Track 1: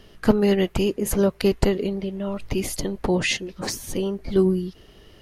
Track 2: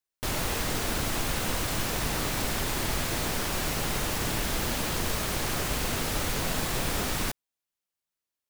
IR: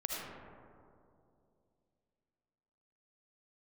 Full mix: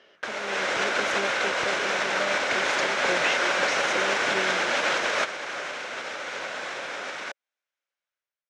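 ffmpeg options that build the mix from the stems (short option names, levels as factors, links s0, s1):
-filter_complex "[0:a]acrossover=split=120[s0][s1];[s1]acompressor=threshold=0.02:ratio=6[s2];[s0][s2]amix=inputs=2:normalize=0,volume=0.631,asplit=2[s3][s4];[1:a]alimiter=level_in=1.06:limit=0.0631:level=0:latency=1:release=163,volume=0.944,volume=1.06[s5];[s4]apad=whole_len=374413[s6];[s5][s6]sidechaingate=range=0.355:threshold=0.00141:ratio=16:detection=peak[s7];[s3][s7]amix=inputs=2:normalize=0,dynaudnorm=f=160:g=7:m=3.55,highpass=490,equalizer=f=560:t=q:w=4:g=7,equalizer=f=1500:t=q:w=4:g=8,equalizer=f=2200:t=q:w=4:g=5,equalizer=f=4600:t=q:w=4:g=-6,lowpass=f=5800:w=0.5412,lowpass=f=5800:w=1.3066"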